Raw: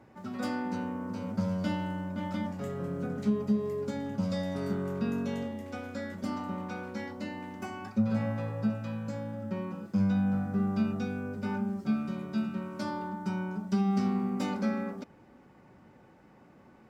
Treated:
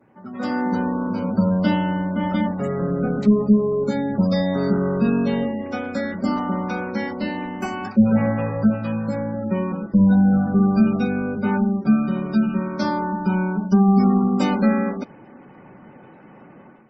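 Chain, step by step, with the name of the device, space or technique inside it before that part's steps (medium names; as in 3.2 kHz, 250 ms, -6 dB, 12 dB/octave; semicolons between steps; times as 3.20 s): noise-suppressed video call (high-pass 120 Hz 24 dB/octave; spectral gate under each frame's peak -30 dB strong; level rider gain up to 11 dB; trim +1.5 dB; Opus 24 kbps 48 kHz)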